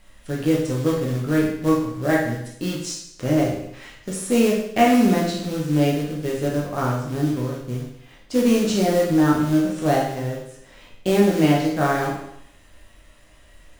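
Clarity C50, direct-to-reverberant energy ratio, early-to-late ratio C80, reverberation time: 3.0 dB, -4.0 dB, 6.5 dB, 0.70 s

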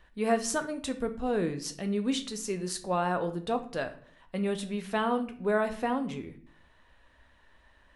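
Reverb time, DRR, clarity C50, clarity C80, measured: 0.55 s, 7.5 dB, 13.0 dB, 17.5 dB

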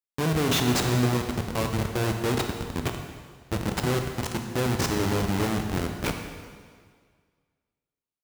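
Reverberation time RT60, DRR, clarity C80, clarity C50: 1.8 s, 4.0 dB, 6.5 dB, 5.0 dB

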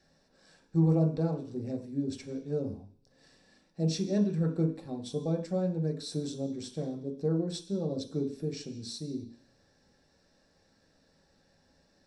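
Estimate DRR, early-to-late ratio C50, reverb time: 2.0 dB, 11.0 dB, 0.50 s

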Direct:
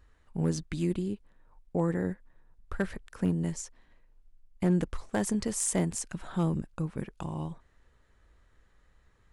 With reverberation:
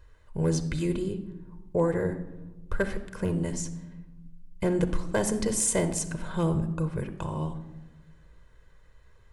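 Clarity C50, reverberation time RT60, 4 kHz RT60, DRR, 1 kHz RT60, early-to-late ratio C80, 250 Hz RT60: 11.5 dB, 1.1 s, 0.60 s, 9.5 dB, 1.0 s, 14.0 dB, 1.6 s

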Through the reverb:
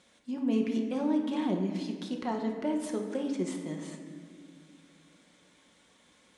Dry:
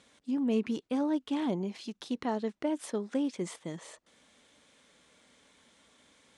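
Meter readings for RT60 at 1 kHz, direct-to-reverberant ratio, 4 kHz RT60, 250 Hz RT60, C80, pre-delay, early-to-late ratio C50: 1.6 s, 1.5 dB, 1.1 s, 3.4 s, 7.5 dB, 5 ms, 5.0 dB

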